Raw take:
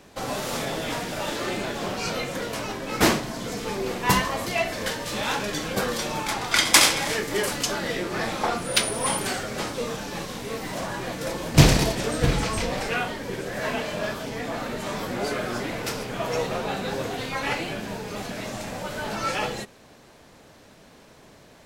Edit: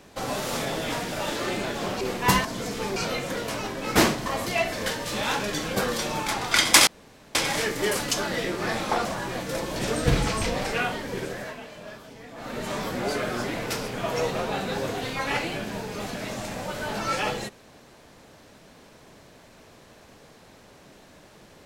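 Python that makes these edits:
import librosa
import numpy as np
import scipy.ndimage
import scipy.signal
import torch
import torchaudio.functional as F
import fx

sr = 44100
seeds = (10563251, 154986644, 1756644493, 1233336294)

y = fx.edit(x, sr, fx.swap(start_s=2.01, length_s=1.3, other_s=3.82, other_length_s=0.44),
    fx.insert_room_tone(at_s=6.87, length_s=0.48),
    fx.cut(start_s=8.57, length_s=2.2),
    fx.cut(start_s=11.48, length_s=0.44),
    fx.fade_down_up(start_s=13.42, length_s=1.37, db=-12.5, fade_s=0.28), tone=tone)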